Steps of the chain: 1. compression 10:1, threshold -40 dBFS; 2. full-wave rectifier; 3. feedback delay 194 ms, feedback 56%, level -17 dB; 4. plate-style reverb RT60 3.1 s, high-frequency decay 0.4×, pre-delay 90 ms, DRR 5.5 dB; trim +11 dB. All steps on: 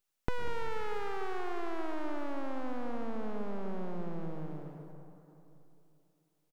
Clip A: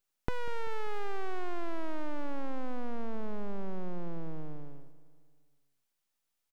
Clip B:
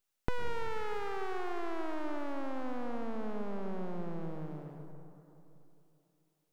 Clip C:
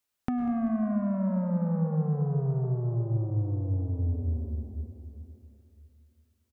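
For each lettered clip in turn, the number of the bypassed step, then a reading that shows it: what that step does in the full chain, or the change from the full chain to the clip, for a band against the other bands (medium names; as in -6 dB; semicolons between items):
4, momentary loudness spread change -4 LU; 3, crest factor change +1.5 dB; 2, crest factor change -4.0 dB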